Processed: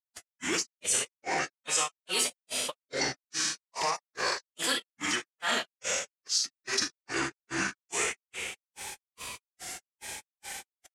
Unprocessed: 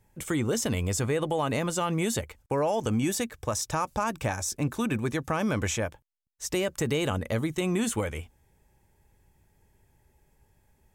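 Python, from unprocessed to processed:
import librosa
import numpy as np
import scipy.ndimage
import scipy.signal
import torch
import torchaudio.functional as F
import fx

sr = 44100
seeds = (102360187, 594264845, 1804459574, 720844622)

y = fx.rattle_buzz(x, sr, strikes_db=-41.0, level_db=-31.0)
y = fx.peak_eq(y, sr, hz=120.0, db=-5.5, octaves=0.46)
y = fx.rev_schroeder(y, sr, rt60_s=0.81, comb_ms=27, drr_db=0.5)
y = fx.granulator(y, sr, seeds[0], grain_ms=223.0, per_s=2.4, spray_ms=206.0, spread_st=7)
y = fx.pitch_keep_formants(y, sr, semitones=-2.5)
y = fx.weighting(y, sr, curve='ITU-R 468')
y = fx.env_flatten(y, sr, amount_pct=70)
y = F.gain(torch.from_numpy(y), -4.5).numpy()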